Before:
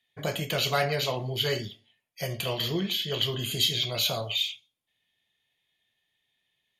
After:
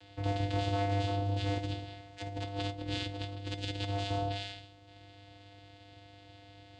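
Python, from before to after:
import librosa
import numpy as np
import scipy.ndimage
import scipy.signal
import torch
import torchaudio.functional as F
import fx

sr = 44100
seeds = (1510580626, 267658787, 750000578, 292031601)

y = fx.bin_compress(x, sr, power=0.4)
y = fx.doubler(y, sr, ms=47.0, db=-10.0)
y = fx.vocoder(y, sr, bands=8, carrier='square', carrier_hz=99.8)
y = fx.over_compress(y, sr, threshold_db=-27.0, ratio=-0.5, at=(1.58, 3.89))
y = fx.comb_fb(y, sr, f0_hz=350.0, decay_s=0.29, harmonics='all', damping=0.0, mix_pct=70)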